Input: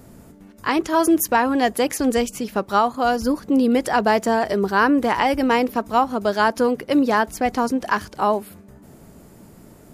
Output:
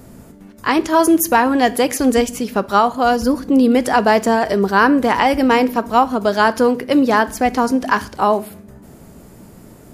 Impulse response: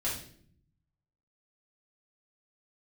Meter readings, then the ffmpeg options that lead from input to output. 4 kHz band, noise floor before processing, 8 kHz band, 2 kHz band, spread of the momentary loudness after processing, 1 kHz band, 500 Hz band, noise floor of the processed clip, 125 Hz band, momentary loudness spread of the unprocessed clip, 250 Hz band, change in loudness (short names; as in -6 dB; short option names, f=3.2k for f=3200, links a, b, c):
+4.5 dB, -47 dBFS, +4.0 dB, +4.5 dB, 5 LU, +4.5 dB, +4.5 dB, -42 dBFS, +5.0 dB, 5 LU, +4.5 dB, +4.5 dB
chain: -filter_complex "[0:a]asplit=2[a][b];[1:a]atrim=start_sample=2205[c];[b][c]afir=irnorm=-1:irlink=0,volume=-18.5dB[d];[a][d]amix=inputs=2:normalize=0,volume=3.5dB"